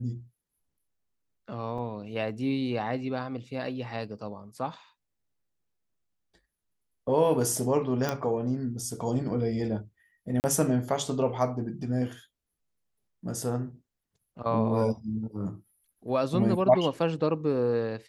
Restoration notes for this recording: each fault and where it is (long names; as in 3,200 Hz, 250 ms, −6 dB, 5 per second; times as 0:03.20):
0:01.78: drop-out 4.3 ms
0:08.09: click −14 dBFS
0:10.40–0:10.44: drop-out 39 ms